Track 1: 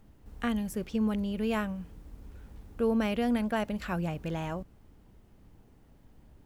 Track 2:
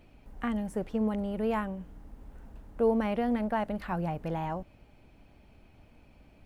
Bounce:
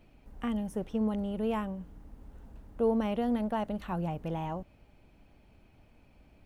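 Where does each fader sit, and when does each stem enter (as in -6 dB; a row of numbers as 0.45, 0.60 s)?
-13.5, -3.0 dB; 0.00, 0.00 s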